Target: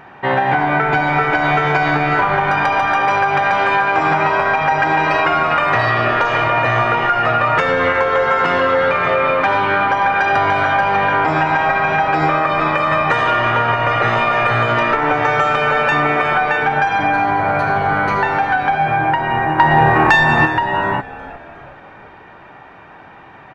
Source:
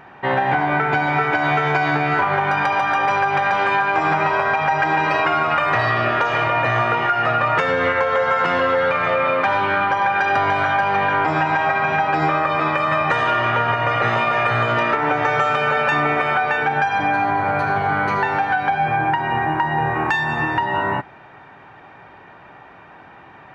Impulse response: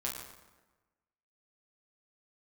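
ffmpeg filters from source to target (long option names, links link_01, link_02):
-filter_complex "[0:a]asplit=5[link_01][link_02][link_03][link_04][link_05];[link_02]adelay=362,afreqshift=-130,volume=-15.5dB[link_06];[link_03]adelay=724,afreqshift=-260,volume=-22.2dB[link_07];[link_04]adelay=1086,afreqshift=-390,volume=-29dB[link_08];[link_05]adelay=1448,afreqshift=-520,volume=-35.7dB[link_09];[link_01][link_06][link_07][link_08][link_09]amix=inputs=5:normalize=0,asplit=3[link_10][link_11][link_12];[link_10]afade=type=out:start_time=19.58:duration=0.02[link_13];[link_11]acontrast=53,afade=type=in:start_time=19.58:duration=0.02,afade=type=out:start_time=20.45:duration=0.02[link_14];[link_12]afade=type=in:start_time=20.45:duration=0.02[link_15];[link_13][link_14][link_15]amix=inputs=3:normalize=0,volume=3dB"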